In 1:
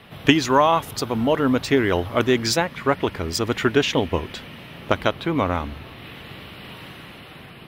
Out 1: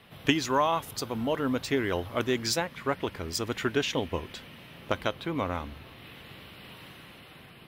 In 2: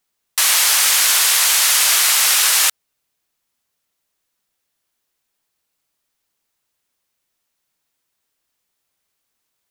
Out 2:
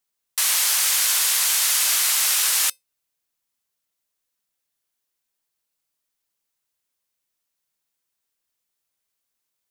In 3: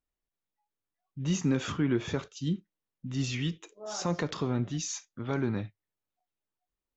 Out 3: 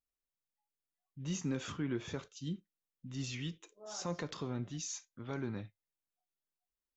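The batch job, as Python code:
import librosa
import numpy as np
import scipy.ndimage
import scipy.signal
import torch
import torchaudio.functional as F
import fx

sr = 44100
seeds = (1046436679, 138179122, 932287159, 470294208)

y = fx.high_shelf(x, sr, hz=4600.0, db=5.0)
y = fx.comb_fb(y, sr, f0_hz=520.0, decay_s=0.17, harmonics='all', damping=0.0, mix_pct=40)
y = y * librosa.db_to_amplitude(-5.0)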